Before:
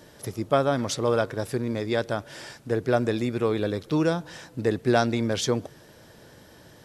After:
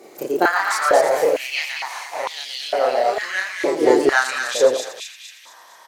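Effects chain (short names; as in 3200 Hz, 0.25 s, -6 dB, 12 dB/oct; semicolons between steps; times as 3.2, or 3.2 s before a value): speed glide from 128% -> 105%; thin delay 0.229 s, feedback 50%, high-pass 1700 Hz, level -4.5 dB; echoes that change speed 0.192 s, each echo +2 st, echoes 3, each echo -6 dB; loudspeakers at several distances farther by 11 m 0 dB, 40 m -9 dB; stepped high-pass 2.2 Hz 360–3500 Hz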